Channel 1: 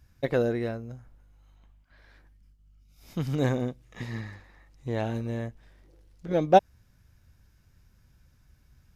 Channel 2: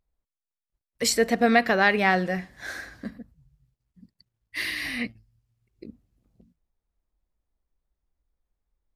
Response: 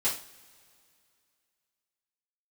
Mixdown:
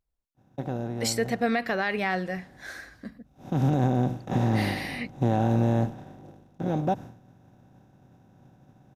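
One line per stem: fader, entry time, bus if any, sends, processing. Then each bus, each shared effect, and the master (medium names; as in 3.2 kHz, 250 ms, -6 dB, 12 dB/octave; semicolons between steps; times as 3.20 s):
3.38 s -14 dB -> 3.71 s -1 dB -> 5.76 s -1 dB -> 6.36 s -8.5 dB, 0.35 s, no send, spectral levelling over time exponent 0.4; expander -26 dBFS; graphic EQ 125/250/500/1000/2000/4000 Hz +7/+8/-6/+4/-6/-4 dB
-4.5 dB, 0.00 s, no send, none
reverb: none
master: peak limiter -15 dBFS, peak gain reduction 8.5 dB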